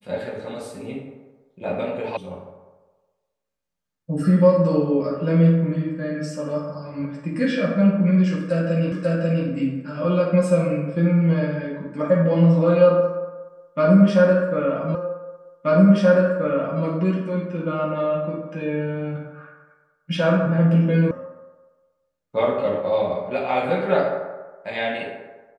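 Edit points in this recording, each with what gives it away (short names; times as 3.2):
2.17 sound cut off
8.92 repeat of the last 0.54 s
14.95 repeat of the last 1.88 s
21.11 sound cut off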